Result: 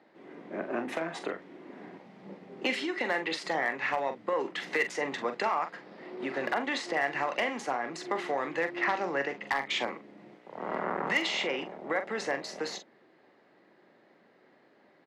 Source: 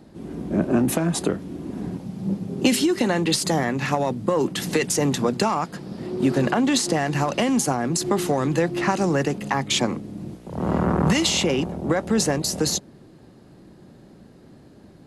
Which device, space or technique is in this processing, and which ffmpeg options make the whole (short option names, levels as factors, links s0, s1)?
megaphone: -filter_complex "[0:a]highpass=530,lowpass=2900,equalizer=f=2000:t=o:w=0.34:g=9,asoftclip=type=hard:threshold=0.188,asplit=2[s0][s1];[s1]adelay=43,volume=0.355[s2];[s0][s2]amix=inputs=2:normalize=0,asettb=1/sr,asplit=3[s3][s4][s5];[s3]atrim=end=8.764[s6];[s4]atrim=start=8.76:end=9.47,asetpts=PTS-STARTPTS,afade=t=in:d=0.004:c=qsin,afade=t=out:st=0.706:d=0.004:c=qsin,lowpass=f=7100:w=0.5412,lowpass=f=7100:w=1.3066[s7];[s5]atrim=start=9.466[s8];[s6][s7]acrossfade=d=0.004:c1=hsin:c2=qsin[s9];[s9][s8]acrossfade=d=0.004:c1=qsin:c2=hsin,volume=0.531"